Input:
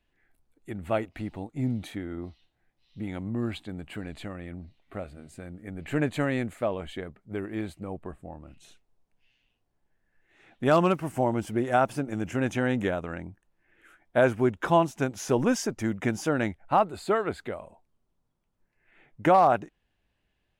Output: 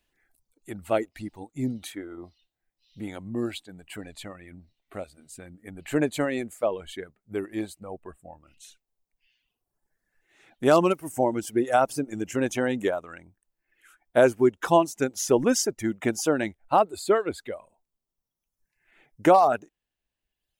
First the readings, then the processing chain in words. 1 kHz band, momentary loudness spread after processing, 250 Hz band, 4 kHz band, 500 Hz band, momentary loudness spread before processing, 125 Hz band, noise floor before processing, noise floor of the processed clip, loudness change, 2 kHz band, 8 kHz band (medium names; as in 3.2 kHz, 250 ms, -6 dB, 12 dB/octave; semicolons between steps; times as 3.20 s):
+1.0 dB, 21 LU, +1.0 dB, +4.0 dB, +3.0 dB, 18 LU, -4.5 dB, -76 dBFS, under -85 dBFS, +2.5 dB, 0.0 dB, +8.5 dB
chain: dynamic bell 380 Hz, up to +6 dB, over -36 dBFS, Q 0.86; reverb removal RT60 1.5 s; tone controls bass -4 dB, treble +10 dB